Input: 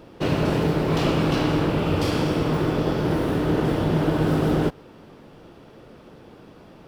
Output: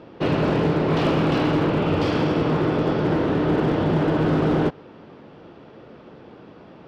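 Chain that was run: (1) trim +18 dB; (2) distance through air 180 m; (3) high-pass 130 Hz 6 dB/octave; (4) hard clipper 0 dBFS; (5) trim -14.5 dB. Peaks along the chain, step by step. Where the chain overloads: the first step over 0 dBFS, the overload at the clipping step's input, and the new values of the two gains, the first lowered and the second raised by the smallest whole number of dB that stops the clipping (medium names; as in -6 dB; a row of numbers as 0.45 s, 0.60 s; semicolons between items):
+8.5 dBFS, +8.0 dBFS, +8.0 dBFS, 0.0 dBFS, -14.5 dBFS; step 1, 8.0 dB; step 1 +10 dB, step 5 -6.5 dB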